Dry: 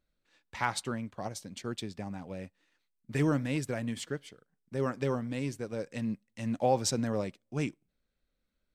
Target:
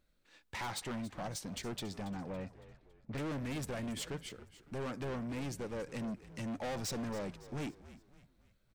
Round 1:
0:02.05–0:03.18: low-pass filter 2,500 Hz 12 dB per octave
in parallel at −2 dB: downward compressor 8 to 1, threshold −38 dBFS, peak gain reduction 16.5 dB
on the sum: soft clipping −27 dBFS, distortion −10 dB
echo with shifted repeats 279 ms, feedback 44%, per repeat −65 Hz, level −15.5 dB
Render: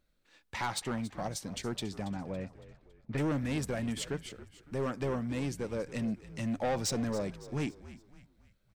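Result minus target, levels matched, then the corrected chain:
soft clipping: distortion −6 dB
0:02.05–0:03.18: low-pass filter 2,500 Hz 12 dB per octave
in parallel at −2 dB: downward compressor 8 to 1, threshold −38 dBFS, peak gain reduction 16.5 dB
on the sum: soft clipping −36.5 dBFS, distortion −4 dB
echo with shifted repeats 279 ms, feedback 44%, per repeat −65 Hz, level −15.5 dB

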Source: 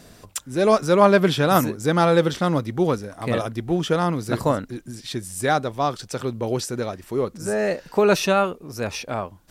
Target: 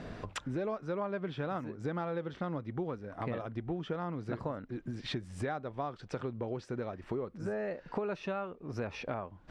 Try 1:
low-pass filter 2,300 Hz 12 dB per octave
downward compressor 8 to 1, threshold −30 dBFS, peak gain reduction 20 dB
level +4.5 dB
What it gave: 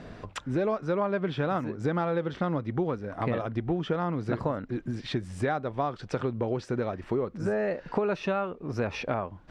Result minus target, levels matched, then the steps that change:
downward compressor: peak gain reduction −8 dB
change: downward compressor 8 to 1, threshold −39 dBFS, peak gain reduction 27.5 dB

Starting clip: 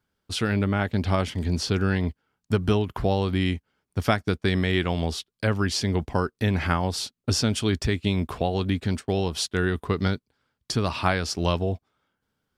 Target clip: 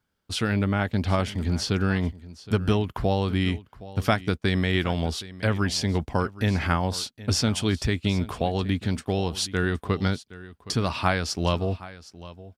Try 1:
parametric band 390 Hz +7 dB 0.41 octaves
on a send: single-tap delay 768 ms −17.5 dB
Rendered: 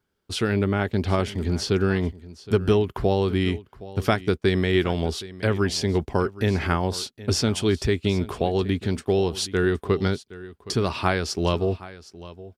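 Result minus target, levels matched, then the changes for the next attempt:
500 Hz band +4.0 dB
change: parametric band 390 Hz −2.5 dB 0.41 octaves

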